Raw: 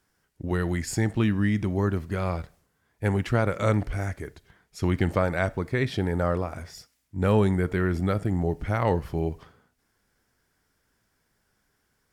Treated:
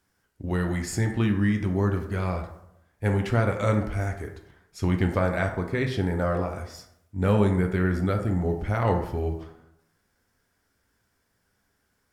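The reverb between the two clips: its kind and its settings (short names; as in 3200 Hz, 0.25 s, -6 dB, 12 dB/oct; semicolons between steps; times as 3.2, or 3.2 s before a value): plate-style reverb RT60 0.78 s, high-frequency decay 0.45×, pre-delay 0 ms, DRR 4 dB; gain -1.5 dB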